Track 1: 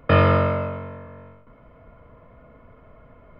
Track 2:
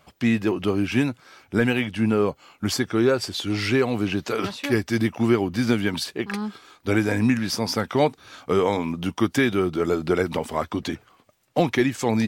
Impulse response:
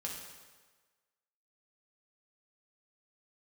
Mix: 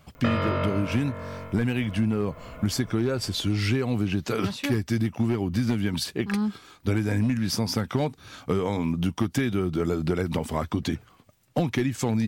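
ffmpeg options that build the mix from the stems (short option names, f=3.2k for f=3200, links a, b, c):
-filter_complex "[0:a]dynaudnorm=f=150:g=9:m=8.5dB,highshelf=f=3.5k:g=11.5,adelay=150,volume=-1dB[a];[1:a]bass=f=250:g=11,treble=f=4k:g=-2,asoftclip=type=hard:threshold=-7dB,volume=-2dB[b];[a][b]amix=inputs=2:normalize=0,highshelf=f=4.7k:g=6.5,acompressor=threshold=-21dB:ratio=6"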